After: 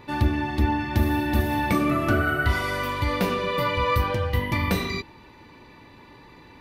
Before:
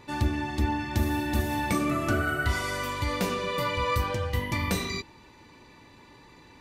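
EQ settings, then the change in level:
parametric band 7,300 Hz −11.5 dB 0.95 octaves
+4.5 dB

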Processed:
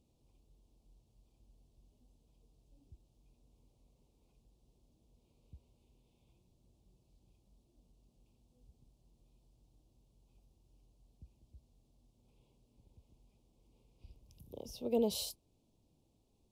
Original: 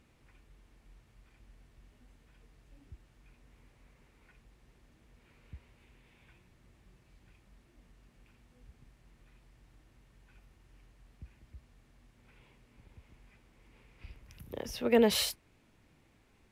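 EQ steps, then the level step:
Butterworth band-reject 1,700 Hz, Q 0.6
−7.0 dB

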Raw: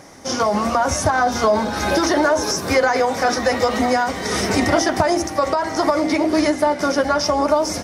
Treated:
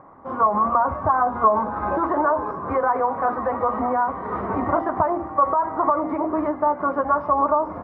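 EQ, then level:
low-pass with resonance 1,100 Hz, resonance Q 5.4
high-frequency loss of the air 380 metres
−7.0 dB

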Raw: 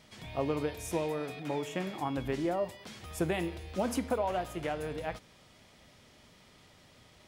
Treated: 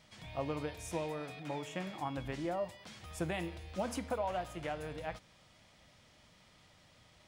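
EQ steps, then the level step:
thirty-one-band graphic EQ 250 Hz −5 dB, 400 Hz −8 dB, 12,500 Hz −9 dB
−3.5 dB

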